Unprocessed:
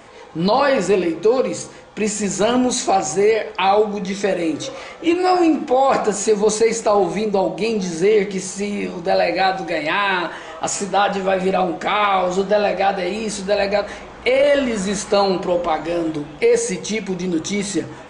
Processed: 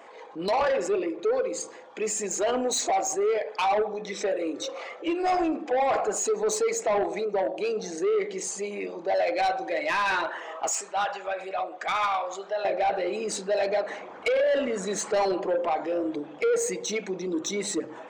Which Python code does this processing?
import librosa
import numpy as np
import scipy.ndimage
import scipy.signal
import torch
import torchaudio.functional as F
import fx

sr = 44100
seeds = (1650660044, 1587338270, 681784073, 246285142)

y = fx.envelope_sharpen(x, sr, power=1.5)
y = fx.highpass(y, sr, hz=fx.steps((0.0, 430.0), (10.73, 970.0), (12.65, 330.0)), slope=12)
y = 10.0 ** (-16.0 / 20.0) * np.tanh(y / 10.0 ** (-16.0 / 20.0))
y = F.gain(torch.from_numpy(y), -3.5).numpy()